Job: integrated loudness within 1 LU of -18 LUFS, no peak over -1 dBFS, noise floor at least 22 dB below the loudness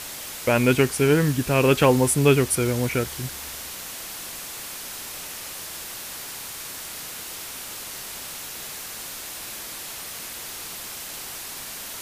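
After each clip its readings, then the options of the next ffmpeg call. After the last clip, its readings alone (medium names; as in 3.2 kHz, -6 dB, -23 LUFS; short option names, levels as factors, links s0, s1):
noise floor -36 dBFS; noise floor target -48 dBFS; loudness -25.5 LUFS; peak level -5.5 dBFS; loudness target -18.0 LUFS
-> -af "afftdn=nr=12:nf=-36"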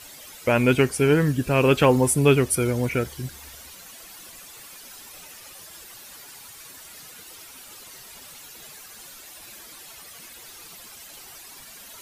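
noise floor -45 dBFS; loudness -21.0 LUFS; peak level -5.5 dBFS; loudness target -18.0 LUFS
-> -af "volume=1.41"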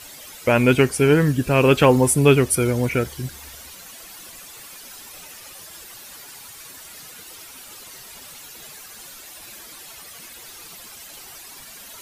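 loudness -18.0 LUFS; peak level -2.5 dBFS; noise floor -42 dBFS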